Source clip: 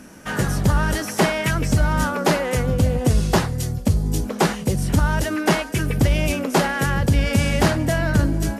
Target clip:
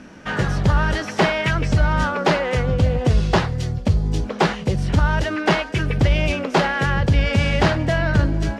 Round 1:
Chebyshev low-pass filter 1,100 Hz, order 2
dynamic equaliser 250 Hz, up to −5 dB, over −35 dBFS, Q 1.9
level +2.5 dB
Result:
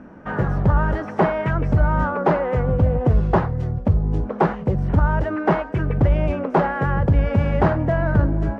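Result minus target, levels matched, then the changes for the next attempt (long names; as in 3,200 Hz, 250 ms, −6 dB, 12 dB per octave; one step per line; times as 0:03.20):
4,000 Hz band −17.5 dB
change: Chebyshev low-pass filter 3,700 Hz, order 2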